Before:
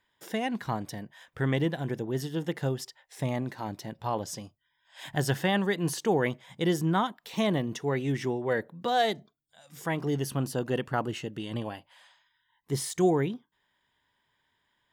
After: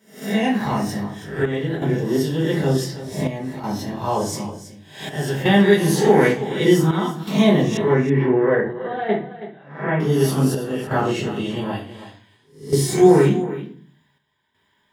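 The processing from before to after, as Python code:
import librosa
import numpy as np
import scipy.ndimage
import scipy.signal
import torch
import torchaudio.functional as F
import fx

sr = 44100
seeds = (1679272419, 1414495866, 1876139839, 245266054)

y = fx.spec_swells(x, sr, rise_s=0.48)
y = scipy.signal.sosfilt(scipy.signal.butter(2, 82.0, 'highpass', fs=sr, output='sos'), y)
y = fx.low_shelf(y, sr, hz=120.0, db=4.5)
y = fx.room_shoebox(y, sr, seeds[0], volume_m3=35.0, walls='mixed', distance_m=1.2)
y = fx.chopper(y, sr, hz=0.55, depth_pct=60, duty_pct=80)
y = fx.lowpass(y, sr, hz=2300.0, slope=24, at=(7.77, 10.0))
y = y + 10.0 ** (-13.5 / 20.0) * np.pad(y, (int(324 * sr / 1000.0), 0))[:len(y)]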